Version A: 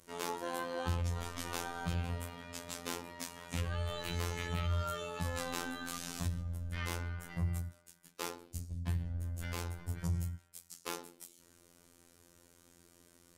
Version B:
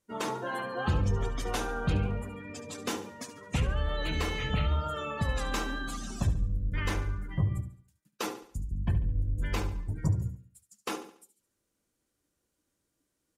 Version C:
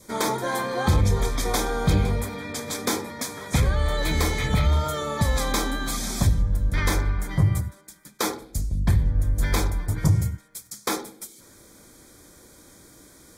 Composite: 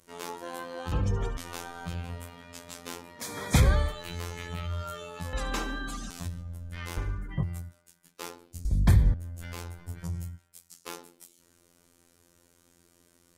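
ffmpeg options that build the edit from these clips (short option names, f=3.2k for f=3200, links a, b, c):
-filter_complex "[1:a]asplit=3[a][b][c];[2:a]asplit=2[d][e];[0:a]asplit=6[f][g][h][i][j][k];[f]atrim=end=0.922[l];[a]atrim=start=0.918:end=1.372[m];[g]atrim=start=1.368:end=3.38[n];[d]atrim=start=3.14:end=3.97[o];[h]atrim=start=3.73:end=5.332[p];[b]atrim=start=5.328:end=6.102[q];[i]atrim=start=6.098:end=6.972[r];[c]atrim=start=6.968:end=7.432[s];[j]atrim=start=7.428:end=8.652[t];[e]atrim=start=8.648:end=9.142[u];[k]atrim=start=9.138[v];[l][m]acrossfade=d=0.004:c1=hsin:c2=hsin[w];[w][n]acrossfade=d=0.004:c1=hsin:c2=hsin[x];[x][o]acrossfade=d=0.24:c1=tri:c2=tri[y];[y][p]acrossfade=d=0.24:c1=tri:c2=tri[z];[z][q]acrossfade=d=0.004:c1=hsin:c2=hsin[aa];[aa][r]acrossfade=d=0.004:c1=hsin:c2=hsin[ab];[ab][s]acrossfade=d=0.004:c1=hsin:c2=hsin[ac];[ac][t]acrossfade=d=0.004:c1=hsin:c2=hsin[ad];[ad][u]acrossfade=d=0.004:c1=hsin:c2=hsin[ae];[ae][v]acrossfade=d=0.004:c1=hsin:c2=hsin"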